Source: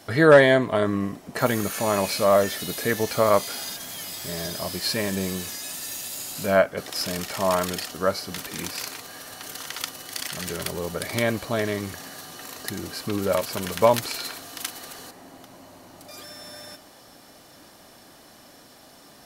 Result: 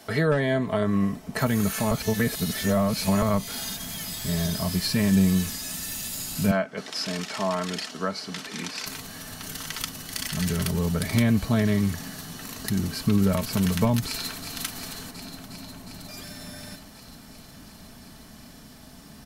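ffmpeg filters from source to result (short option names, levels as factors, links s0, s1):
-filter_complex "[0:a]asettb=1/sr,asplit=3[s0][s1][s2];[s0]atrim=end=6.514[s3];[s1]atrim=start=6.51:end=8.86,asetpts=PTS-STARTPTS,afade=t=in:d=0.004:c=qsin,afade=t=out:st=2.346:d=0.004:c=qsin,highpass=320,lowpass=6300[s4];[s2]atrim=start=8.856[s5];[s3][s4]acrossfade=d=0.004:c1=hsin:c2=qsin[s6];[s6][s5]acrossfade=d=0.004:c1=qsin:c2=hsin,asplit=2[s7][s8];[s8]afade=t=in:st=14.06:d=0.01,afade=t=out:st=14.46:d=0.01,aecho=0:1:360|720|1080|1440|1800|2160|2520|2880|3240|3600|3960|4320:0.398107|0.318486|0.254789|0.203831|0.163065|0.130452|0.104361|0.0834891|0.0667913|0.053433|0.0427464|0.0341971[s9];[s7][s9]amix=inputs=2:normalize=0,asplit=3[s10][s11][s12];[s10]atrim=end=1.912[s13];[s11]atrim=start=1.908:end=3.222,asetpts=PTS-STARTPTS,areverse[s14];[s12]atrim=start=3.218[s15];[s13][s14]acrossfade=d=0.004:c1=hsin:c2=hsin[s16];[s16][s15]acrossfade=d=0.004:c1=hsin:c2=hsin,asubboost=boost=6.5:cutoff=180,acrossover=split=240[s17][s18];[s18]acompressor=threshold=0.0562:ratio=4[s19];[s17][s19]amix=inputs=2:normalize=0,aecho=1:1:4.6:0.42"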